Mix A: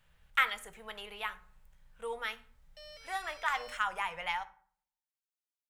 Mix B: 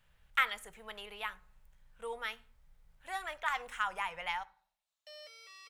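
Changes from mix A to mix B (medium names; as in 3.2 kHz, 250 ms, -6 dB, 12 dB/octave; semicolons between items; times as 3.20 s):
speech: send -6.5 dB; background: entry +2.30 s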